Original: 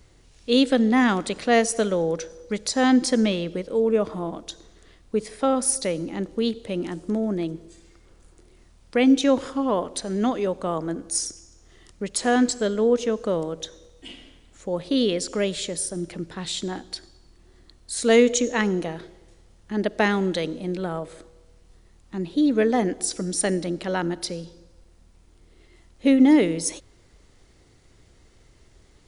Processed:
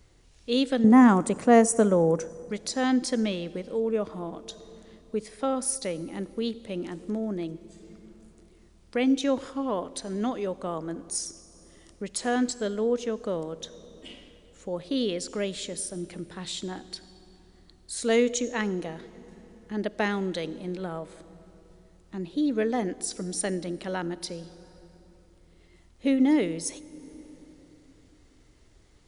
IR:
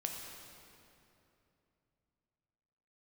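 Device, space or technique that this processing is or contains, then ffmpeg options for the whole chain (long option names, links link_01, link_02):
ducked reverb: -filter_complex "[0:a]asettb=1/sr,asplit=3[link_01][link_02][link_03];[link_01]atrim=end=0.844[link_04];[link_02]atrim=start=0.84:end=2.5,asetpts=PTS-STARTPTS,afade=type=in:duration=0.004:curve=qsin,afade=type=out:start_time=1.656:duration=0.004:curve=qsin,equalizer=frequency=125:width_type=o:width=1:gain=12,equalizer=frequency=250:width_type=o:width=1:gain=7,equalizer=frequency=500:width_type=o:width=1:gain=4,equalizer=frequency=1000:width_type=o:width=1:gain=9,equalizer=frequency=4000:width_type=o:width=1:gain=-12,equalizer=frequency=8000:width_type=o:width=1:gain=11[link_05];[link_03]atrim=start=2.496[link_06];[link_04][link_05]acrossfade=duration=0.004:curve1=hsin:curve2=qsin[link_07];[link_07][link_06]acrossfade=duration=0.004:curve1=qsin:curve2=hsin,asplit=3[link_08][link_09][link_10];[1:a]atrim=start_sample=2205[link_11];[link_09][link_11]afir=irnorm=-1:irlink=0[link_12];[link_10]apad=whole_len=1282157[link_13];[link_12][link_13]sidechaincompress=threshold=-29dB:ratio=8:attack=9.7:release=685,volume=-9dB[link_14];[link_08][link_14]amix=inputs=2:normalize=0,volume=-6.5dB"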